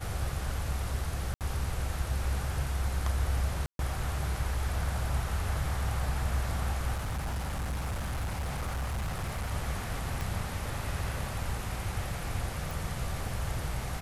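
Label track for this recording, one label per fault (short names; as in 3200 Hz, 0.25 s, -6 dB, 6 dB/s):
1.340000	1.410000	gap 68 ms
3.660000	3.790000	gap 0.132 s
6.940000	9.520000	clipped -29.5 dBFS
10.210000	10.210000	pop
12.710000	12.710000	pop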